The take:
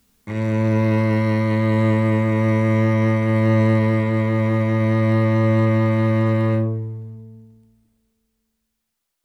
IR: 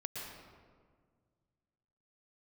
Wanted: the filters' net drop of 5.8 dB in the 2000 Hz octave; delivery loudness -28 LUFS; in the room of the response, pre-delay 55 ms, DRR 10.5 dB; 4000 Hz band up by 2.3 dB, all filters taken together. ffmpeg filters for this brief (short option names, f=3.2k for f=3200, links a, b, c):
-filter_complex "[0:a]equalizer=f=2k:t=o:g=-7.5,equalizer=f=4k:t=o:g=5.5,asplit=2[a][b];[1:a]atrim=start_sample=2205,adelay=55[c];[b][c]afir=irnorm=-1:irlink=0,volume=-10.5dB[d];[a][d]amix=inputs=2:normalize=0,volume=-11dB"